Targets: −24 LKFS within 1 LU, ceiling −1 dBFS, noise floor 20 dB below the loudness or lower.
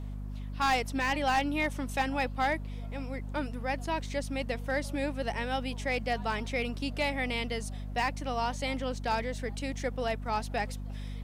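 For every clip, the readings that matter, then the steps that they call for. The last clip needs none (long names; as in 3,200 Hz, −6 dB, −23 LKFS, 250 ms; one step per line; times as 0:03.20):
share of clipped samples 0.3%; peaks flattened at −21.0 dBFS; mains hum 50 Hz; hum harmonics up to 250 Hz; level of the hum −35 dBFS; integrated loudness −32.5 LKFS; sample peak −21.0 dBFS; target loudness −24.0 LKFS
→ clipped peaks rebuilt −21 dBFS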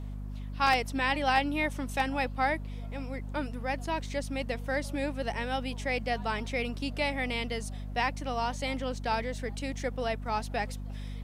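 share of clipped samples 0.0%; mains hum 50 Hz; hum harmonics up to 250 Hz; level of the hum −35 dBFS
→ hum removal 50 Hz, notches 5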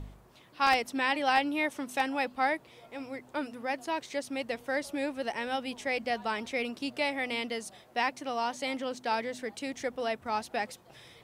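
mains hum none found; integrated loudness −32.0 LKFS; sample peak −11.0 dBFS; target loudness −24.0 LKFS
→ level +8 dB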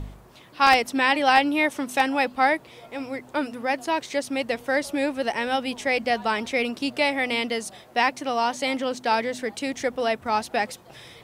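integrated loudness −24.0 LKFS; sample peak −3.0 dBFS; background noise floor −50 dBFS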